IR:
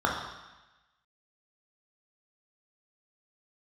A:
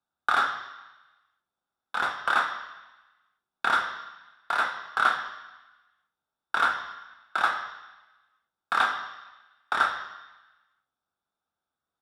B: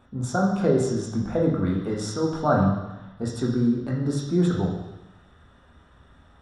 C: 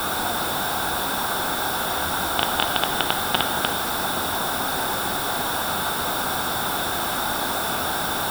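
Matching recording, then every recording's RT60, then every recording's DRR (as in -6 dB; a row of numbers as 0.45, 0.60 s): B; 1.1, 1.1, 1.1 s; 5.0, -2.0, 9.5 dB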